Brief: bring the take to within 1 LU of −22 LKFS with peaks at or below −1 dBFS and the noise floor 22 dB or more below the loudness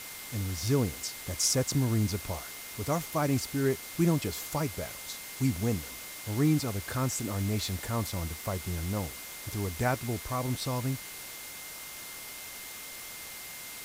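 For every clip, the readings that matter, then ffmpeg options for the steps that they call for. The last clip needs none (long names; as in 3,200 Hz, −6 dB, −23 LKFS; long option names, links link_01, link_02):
interfering tone 2,100 Hz; level of the tone −49 dBFS; background noise floor −43 dBFS; target noise floor −54 dBFS; integrated loudness −32.0 LKFS; sample peak −14.5 dBFS; target loudness −22.0 LKFS
→ -af "bandreject=frequency=2100:width=30"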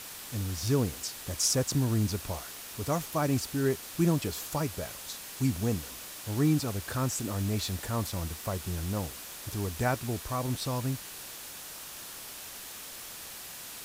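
interfering tone none found; background noise floor −44 dBFS; target noise floor −54 dBFS
→ -af "afftdn=noise_reduction=10:noise_floor=-44"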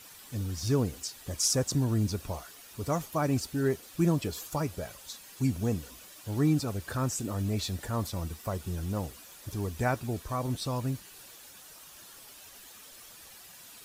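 background noise floor −51 dBFS; target noise floor −54 dBFS
→ -af "afftdn=noise_reduction=6:noise_floor=-51"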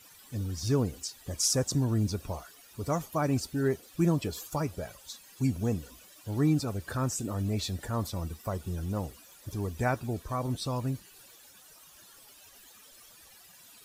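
background noise floor −55 dBFS; integrated loudness −31.5 LKFS; sample peak −15.0 dBFS; target loudness −22.0 LKFS
→ -af "volume=9.5dB"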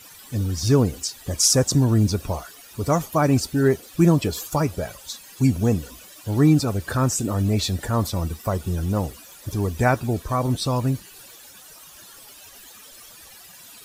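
integrated loudness −22.0 LKFS; sample peak −5.5 dBFS; background noise floor −46 dBFS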